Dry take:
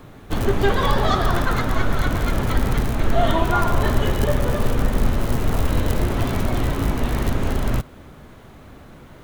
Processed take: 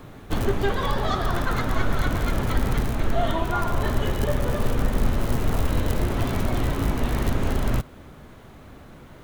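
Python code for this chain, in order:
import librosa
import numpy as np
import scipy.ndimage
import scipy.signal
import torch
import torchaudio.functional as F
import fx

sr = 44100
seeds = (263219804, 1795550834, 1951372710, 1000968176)

y = fx.rider(x, sr, range_db=4, speed_s=0.5)
y = F.gain(torch.from_numpy(y), -3.5).numpy()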